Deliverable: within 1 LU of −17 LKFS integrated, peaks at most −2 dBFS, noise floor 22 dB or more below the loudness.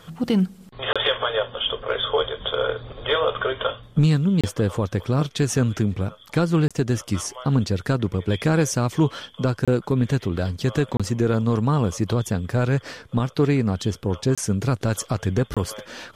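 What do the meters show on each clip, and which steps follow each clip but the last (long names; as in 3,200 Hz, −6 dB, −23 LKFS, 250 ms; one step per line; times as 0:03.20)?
number of dropouts 7; longest dropout 26 ms; integrated loudness −23.0 LKFS; sample peak −10.0 dBFS; target loudness −17.0 LKFS
→ repair the gap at 0:00.93/0:04.41/0:06.68/0:09.65/0:10.97/0:14.35/0:15.54, 26 ms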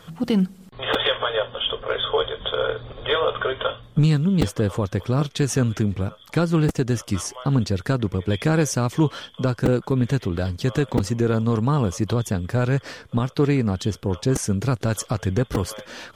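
number of dropouts 0; integrated loudness −23.0 LKFS; sample peak −4.5 dBFS; target loudness −17.0 LKFS
→ level +6 dB
brickwall limiter −2 dBFS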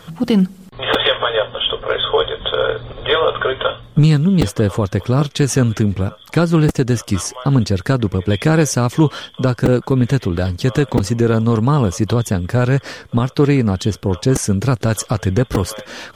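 integrated loudness −17.0 LKFS; sample peak −2.0 dBFS; background noise floor −43 dBFS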